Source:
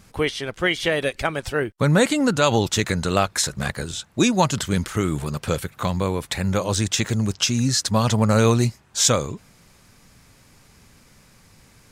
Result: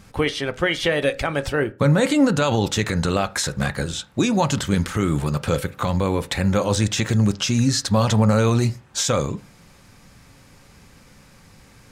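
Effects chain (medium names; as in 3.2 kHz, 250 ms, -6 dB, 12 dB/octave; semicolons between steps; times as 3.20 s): peak limiter -13.5 dBFS, peak gain reduction 8 dB; treble shelf 5.3 kHz -5 dB; on a send: reverberation RT60 0.35 s, pre-delay 3 ms, DRR 10.5 dB; on the sum: trim +3.5 dB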